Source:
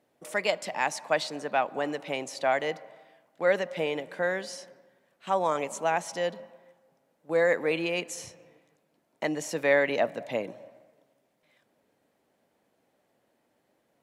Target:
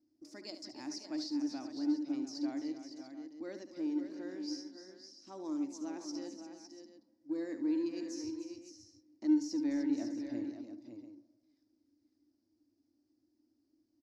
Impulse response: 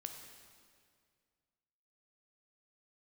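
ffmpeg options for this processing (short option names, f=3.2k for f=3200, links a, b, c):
-filter_complex "[0:a]firequalizer=gain_entry='entry(110,0);entry(160,-23);entry(300,12);entry(430,-21);entry(3200,-25);entry(4900,3);entry(8600,-23)':delay=0.05:min_phase=1,asplit=2[a][b];[b]asoftclip=type=tanh:threshold=-31dB,volume=-9.5dB[c];[a][c]amix=inputs=2:normalize=0,aecho=1:1:72|297|519|556|690:0.299|0.282|0.141|0.355|0.2,volume=-6dB"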